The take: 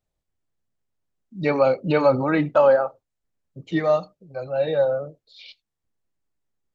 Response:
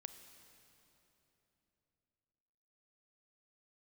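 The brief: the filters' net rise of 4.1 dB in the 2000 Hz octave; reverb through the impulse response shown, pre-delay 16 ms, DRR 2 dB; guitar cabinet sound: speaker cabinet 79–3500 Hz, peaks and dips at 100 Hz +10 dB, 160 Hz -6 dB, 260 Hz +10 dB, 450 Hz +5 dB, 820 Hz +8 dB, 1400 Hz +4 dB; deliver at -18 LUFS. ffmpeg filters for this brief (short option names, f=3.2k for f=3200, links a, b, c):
-filter_complex "[0:a]equalizer=f=2k:t=o:g=3,asplit=2[a][b];[1:a]atrim=start_sample=2205,adelay=16[c];[b][c]afir=irnorm=-1:irlink=0,volume=3dB[d];[a][d]amix=inputs=2:normalize=0,highpass=79,equalizer=f=100:t=q:w=4:g=10,equalizer=f=160:t=q:w=4:g=-6,equalizer=f=260:t=q:w=4:g=10,equalizer=f=450:t=q:w=4:g=5,equalizer=f=820:t=q:w=4:g=8,equalizer=f=1.4k:t=q:w=4:g=4,lowpass=f=3.5k:w=0.5412,lowpass=f=3.5k:w=1.3066,volume=-2dB"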